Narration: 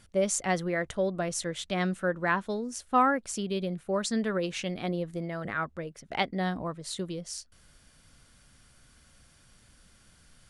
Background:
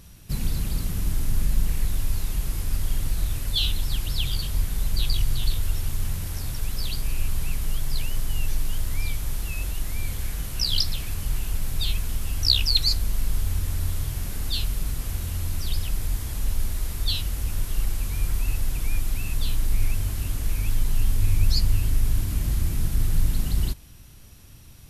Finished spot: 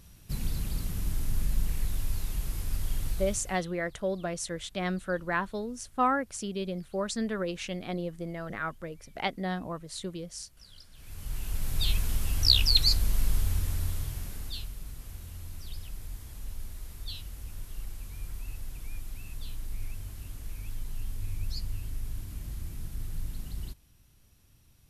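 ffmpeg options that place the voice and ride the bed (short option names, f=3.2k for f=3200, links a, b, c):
-filter_complex "[0:a]adelay=3050,volume=-2.5dB[a];[1:a]volume=22.5dB,afade=t=out:st=3.1:d=0.52:silence=0.0630957,afade=t=in:st=10.93:d=0.99:silence=0.0375837,afade=t=out:st=13.26:d=1.46:silence=0.237137[b];[a][b]amix=inputs=2:normalize=0"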